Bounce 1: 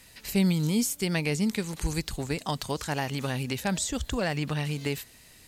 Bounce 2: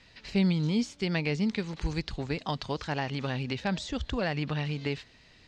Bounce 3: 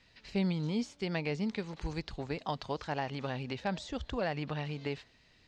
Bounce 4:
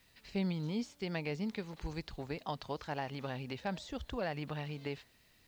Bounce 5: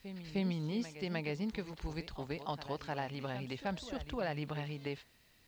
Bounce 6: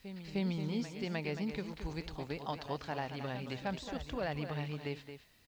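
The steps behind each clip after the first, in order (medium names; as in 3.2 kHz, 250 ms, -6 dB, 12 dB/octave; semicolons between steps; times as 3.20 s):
low-pass 4.9 kHz 24 dB/octave; trim -1.5 dB
dynamic bell 700 Hz, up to +6 dB, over -46 dBFS, Q 0.73; trim -7 dB
added noise white -70 dBFS; trim -3.5 dB
reverse echo 305 ms -12 dB
delay 223 ms -9.5 dB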